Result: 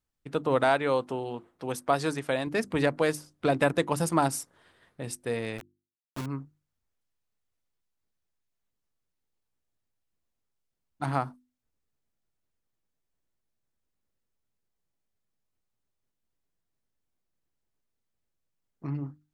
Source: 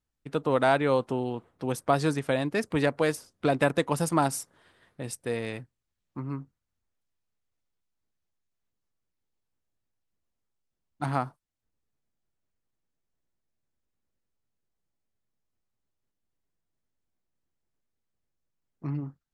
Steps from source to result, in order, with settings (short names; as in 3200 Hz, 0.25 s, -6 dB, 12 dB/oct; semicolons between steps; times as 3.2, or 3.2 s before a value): 0.64–2.47 low shelf 280 Hz -7 dB; 5.58–6.26 requantised 6-bit, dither none; notches 50/100/150/200/250/300/350 Hz